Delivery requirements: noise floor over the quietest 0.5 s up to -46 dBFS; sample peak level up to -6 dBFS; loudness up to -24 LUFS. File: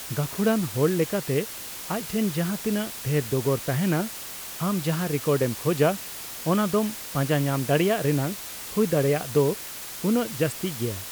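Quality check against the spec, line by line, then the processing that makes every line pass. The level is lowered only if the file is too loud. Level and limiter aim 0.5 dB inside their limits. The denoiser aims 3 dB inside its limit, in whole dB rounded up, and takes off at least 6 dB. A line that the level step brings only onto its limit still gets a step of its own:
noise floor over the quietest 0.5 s -37 dBFS: fail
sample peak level -10.0 dBFS: OK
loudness -25.5 LUFS: OK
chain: denoiser 12 dB, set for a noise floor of -37 dBFS

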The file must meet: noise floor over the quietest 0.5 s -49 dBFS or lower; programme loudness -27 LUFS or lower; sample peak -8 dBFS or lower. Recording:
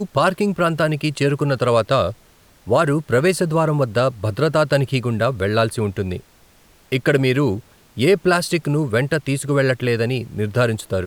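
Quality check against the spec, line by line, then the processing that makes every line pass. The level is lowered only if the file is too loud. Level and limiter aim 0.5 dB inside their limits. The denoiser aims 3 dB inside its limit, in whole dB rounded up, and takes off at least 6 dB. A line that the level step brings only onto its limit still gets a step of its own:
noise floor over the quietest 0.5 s -52 dBFS: OK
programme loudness -19.0 LUFS: fail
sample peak -5.5 dBFS: fail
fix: gain -8.5 dB

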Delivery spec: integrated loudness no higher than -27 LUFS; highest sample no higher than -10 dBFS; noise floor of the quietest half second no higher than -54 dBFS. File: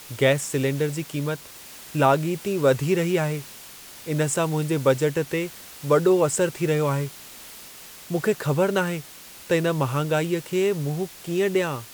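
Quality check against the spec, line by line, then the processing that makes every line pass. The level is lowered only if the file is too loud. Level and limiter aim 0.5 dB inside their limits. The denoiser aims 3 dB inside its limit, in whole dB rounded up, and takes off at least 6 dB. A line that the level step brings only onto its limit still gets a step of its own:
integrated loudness -24.0 LUFS: fail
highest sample -6.0 dBFS: fail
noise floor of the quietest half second -43 dBFS: fail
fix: denoiser 11 dB, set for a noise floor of -43 dBFS; gain -3.5 dB; limiter -10.5 dBFS

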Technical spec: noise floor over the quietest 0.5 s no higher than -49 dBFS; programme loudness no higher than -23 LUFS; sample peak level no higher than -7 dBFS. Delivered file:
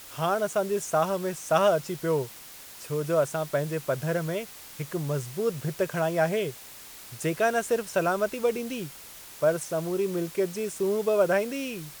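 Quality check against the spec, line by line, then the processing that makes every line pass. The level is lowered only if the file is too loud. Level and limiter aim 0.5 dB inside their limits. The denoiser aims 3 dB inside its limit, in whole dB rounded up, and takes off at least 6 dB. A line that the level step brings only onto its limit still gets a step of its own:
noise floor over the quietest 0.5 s -46 dBFS: fail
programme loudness -27.5 LUFS: OK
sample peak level -9.5 dBFS: OK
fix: denoiser 6 dB, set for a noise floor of -46 dBFS

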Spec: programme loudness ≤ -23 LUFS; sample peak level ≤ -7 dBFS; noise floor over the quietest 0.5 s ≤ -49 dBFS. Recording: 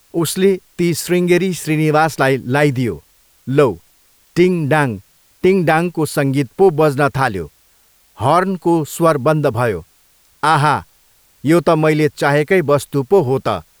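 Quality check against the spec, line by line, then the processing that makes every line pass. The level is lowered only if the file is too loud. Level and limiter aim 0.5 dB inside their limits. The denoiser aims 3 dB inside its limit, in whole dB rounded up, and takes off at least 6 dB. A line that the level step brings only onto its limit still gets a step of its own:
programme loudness -15.5 LUFS: fail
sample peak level -2.0 dBFS: fail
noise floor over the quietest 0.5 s -54 dBFS: OK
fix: gain -8 dB

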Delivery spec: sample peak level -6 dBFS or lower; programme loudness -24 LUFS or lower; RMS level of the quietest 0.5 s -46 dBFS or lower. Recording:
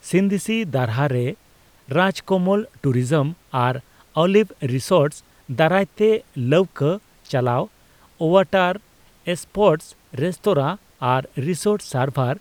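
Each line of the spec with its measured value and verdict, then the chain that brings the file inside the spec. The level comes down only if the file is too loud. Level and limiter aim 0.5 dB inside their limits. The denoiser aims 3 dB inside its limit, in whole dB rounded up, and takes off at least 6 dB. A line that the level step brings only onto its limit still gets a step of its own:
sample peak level -2.5 dBFS: fail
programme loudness -21.0 LUFS: fail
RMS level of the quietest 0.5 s -54 dBFS: OK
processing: gain -3.5 dB; limiter -6.5 dBFS

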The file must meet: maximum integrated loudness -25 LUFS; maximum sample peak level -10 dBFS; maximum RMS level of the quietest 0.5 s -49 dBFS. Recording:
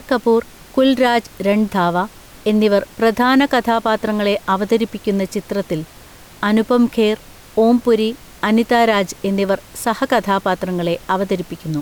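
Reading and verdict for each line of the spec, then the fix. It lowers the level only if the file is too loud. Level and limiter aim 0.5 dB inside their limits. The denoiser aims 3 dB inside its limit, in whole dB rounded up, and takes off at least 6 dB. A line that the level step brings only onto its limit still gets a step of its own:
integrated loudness -17.5 LUFS: fail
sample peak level -5.0 dBFS: fail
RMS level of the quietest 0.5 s -41 dBFS: fail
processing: denoiser 6 dB, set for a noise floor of -41 dBFS; gain -8 dB

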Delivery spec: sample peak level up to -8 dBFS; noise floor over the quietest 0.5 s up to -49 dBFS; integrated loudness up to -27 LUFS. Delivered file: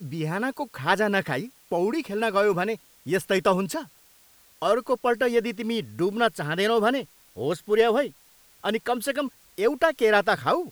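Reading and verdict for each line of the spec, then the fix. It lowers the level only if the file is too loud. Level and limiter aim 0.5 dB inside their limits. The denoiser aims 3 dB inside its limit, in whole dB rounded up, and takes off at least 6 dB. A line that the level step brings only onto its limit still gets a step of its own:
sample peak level -6.5 dBFS: fail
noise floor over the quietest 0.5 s -57 dBFS: OK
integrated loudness -25.0 LUFS: fail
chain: gain -2.5 dB

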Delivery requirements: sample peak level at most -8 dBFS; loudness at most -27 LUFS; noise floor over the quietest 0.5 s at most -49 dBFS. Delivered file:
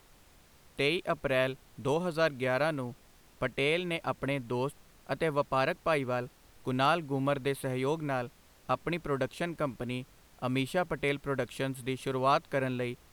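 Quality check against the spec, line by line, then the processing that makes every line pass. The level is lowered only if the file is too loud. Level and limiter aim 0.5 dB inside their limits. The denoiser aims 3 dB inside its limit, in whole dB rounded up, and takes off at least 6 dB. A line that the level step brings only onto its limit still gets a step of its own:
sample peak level -14.0 dBFS: OK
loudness -32.0 LUFS: OK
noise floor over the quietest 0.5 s -59 dBFS: OK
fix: none

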